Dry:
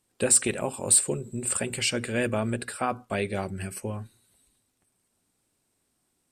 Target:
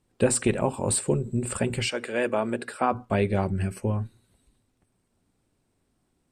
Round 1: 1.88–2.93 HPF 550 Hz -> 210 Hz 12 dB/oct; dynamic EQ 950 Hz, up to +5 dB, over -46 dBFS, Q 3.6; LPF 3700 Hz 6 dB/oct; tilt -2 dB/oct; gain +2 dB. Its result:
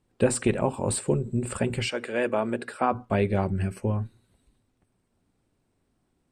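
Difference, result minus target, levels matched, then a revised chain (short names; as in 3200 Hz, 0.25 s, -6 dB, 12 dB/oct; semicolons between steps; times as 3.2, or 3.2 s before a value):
8000 Hz band -4.0 dB
1.88–2.93 HPF 550 Hz -> 210 Hz 12 dB/oct; dynamic EQ 950 Hz, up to +5 dB, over -46 dBFS, Q 3.6; LPF 7700 Hz 6 dB/oct; tilt -2 dB/oct; gain +2 dB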